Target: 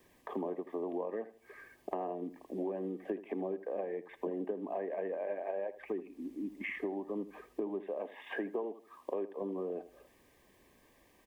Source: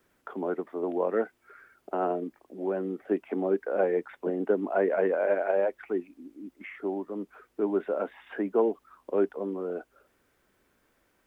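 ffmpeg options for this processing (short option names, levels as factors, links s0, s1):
-filter_complex "[0:a]asettb=1/sr,asplit=3[s0][s1][s2];[s0]atrim=end=7.854[s3];[s1]atrim=start=7.85:end=9.42,asetpts=PTS-STARTPTS,afade=t=in:d=0.004:c=qsin,afade=t=out:st=1.566:d=0.004:c=qsin,highpass=f=290:p=1[s4];[s2]atrim=start=9.416[s5];[s3][s4]acrossfade=d=0.004:c1=hsin:c2=qsin[s6];[s6][s5]acrossfade=d=0.004:c1=qsin:c2=hsin,acompressor=threshold=0.0126:ratio=16,asuperstop=centerf=1400:order=8:qfactor=4,asplit=2[s7][s8];[s8]adelay=80,lowpass=f=2000:p=1,volume=0.2,asplit=2[s9][s10];[s10]adelay=80,lowpass=f=2000:p=1,volume=0.31,asplit=2[s11][s12];[s12]adelay=80,lowpass=f=2000:p=1,volume=0.31[s13];[s7][s9][s11][s13]amix=inputs=4:normalize=0,volume=1.68"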